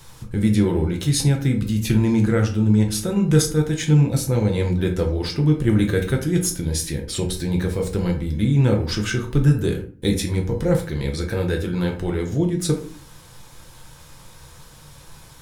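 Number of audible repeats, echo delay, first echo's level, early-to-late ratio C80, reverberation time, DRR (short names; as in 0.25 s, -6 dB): none, none, none, 14.5 dB, 0.45 s, 1.5 dB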